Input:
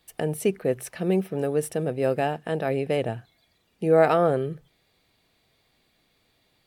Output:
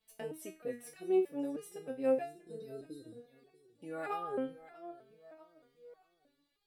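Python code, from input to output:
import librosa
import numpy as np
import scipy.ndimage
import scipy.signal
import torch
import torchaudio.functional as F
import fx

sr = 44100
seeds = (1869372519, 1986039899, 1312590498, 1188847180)

y = fx.spec_repair(x, sr, seeds[0], start_s=2.25, length_s=0.95, low_hz=530.0, high_hz=3700.0, source='after')
y = fx.echo_feedback(y, sr, ms=639, feedback_pct=42, wet_db=-17.5)
y = fx.resonator_held(y, sr, hz=3.2, low_hz=220.0, high_hz=410.0)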